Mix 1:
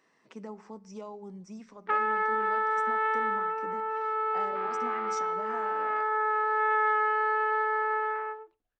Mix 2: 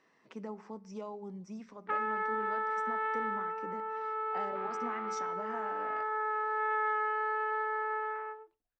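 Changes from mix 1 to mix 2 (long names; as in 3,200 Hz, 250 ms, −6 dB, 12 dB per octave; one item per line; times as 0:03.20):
background −5.5 dB
master: add high-frequency loss of the air 66 metres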